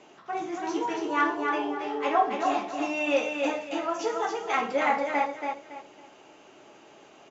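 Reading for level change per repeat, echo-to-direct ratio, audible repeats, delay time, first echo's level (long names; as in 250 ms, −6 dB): −11.0 dB, −4.0 dB, 3, 279 ms, −4.5 dB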